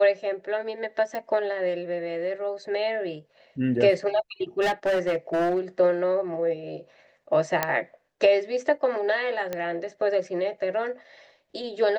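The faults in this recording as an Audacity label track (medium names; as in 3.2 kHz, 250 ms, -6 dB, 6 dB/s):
1.150000	1.150000	pop -20 dBFS
4.610000	5.590000	clipped -20 dBFS
7.630000	7.630000	pop -7 dBFS
9.530000	9.530000	pop -16 dBFS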